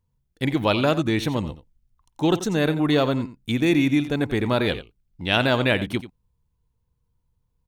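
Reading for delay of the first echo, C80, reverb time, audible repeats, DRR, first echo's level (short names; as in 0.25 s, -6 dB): 88 ms, none, none, 1, none, -14.0 dB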